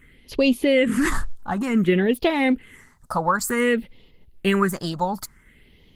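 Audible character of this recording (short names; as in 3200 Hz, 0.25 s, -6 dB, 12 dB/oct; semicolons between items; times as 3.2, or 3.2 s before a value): phasing stages 4, 0.55 Hz, lowest notch 370–1500 Hz; Opus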